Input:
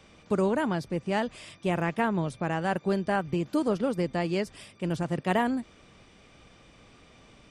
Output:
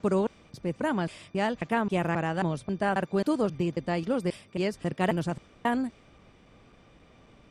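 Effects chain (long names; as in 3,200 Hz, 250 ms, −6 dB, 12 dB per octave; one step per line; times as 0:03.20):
slices reordered back to front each 269 ms, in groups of 2
one half of a high-frequency compander decoder only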